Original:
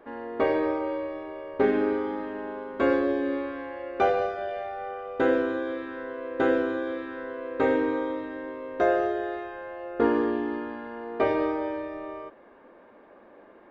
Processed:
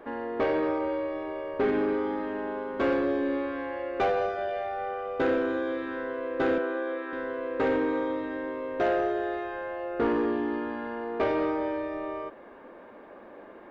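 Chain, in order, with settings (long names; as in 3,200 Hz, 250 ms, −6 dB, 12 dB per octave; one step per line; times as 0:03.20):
0:06.58–0:07.13: three-way crossover with the lows and the highs turned down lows −24 dB, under 310 Hz, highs −12 dB, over 2,900 Hz
in parallel at −0.5 dB: downward compressor, threshold −37 dBFS, peak gain reduction 18 dB
on the sum: soft clipping −18.5 dBFS, distortion −14 dB
level −1 dB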